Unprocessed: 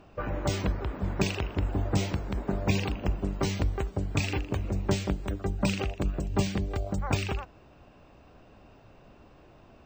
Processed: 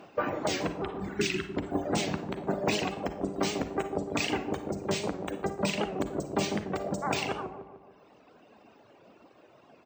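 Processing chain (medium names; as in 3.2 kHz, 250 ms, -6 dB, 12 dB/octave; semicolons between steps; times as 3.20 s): reverb removal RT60 0.94 s; high-pass 250 Hz 12 dB/octave; reverb removal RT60 1.2 s; spectral replace 0.87–1.42 s, 430–1300 Hz both; dynamic bell 700 Hz, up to +3 dB, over -51 dBFS, Q 4; in parallel at +2.5 dB: gain riding 2 s; on the sum: peak limiter -14.5 dBFS, peak gain reduction 7.5 dB; harmony voices -4 st -10 dB; feedback echo behind a low-pass 148 ms, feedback 49%, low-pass 770 Hz, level -5 dB; Schroeder reverb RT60 0.44 s, DRR 9 dB; warped record 78 rpm, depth 100 cents; trim -3 dB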